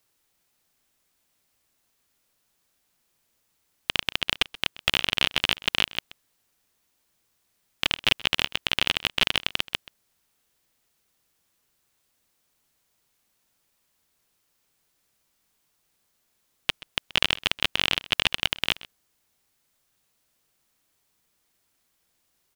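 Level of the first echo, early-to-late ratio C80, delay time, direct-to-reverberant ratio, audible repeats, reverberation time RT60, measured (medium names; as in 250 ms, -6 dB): -19.5 dB, no reverb, 129 ms, no reverb, 1, no reverb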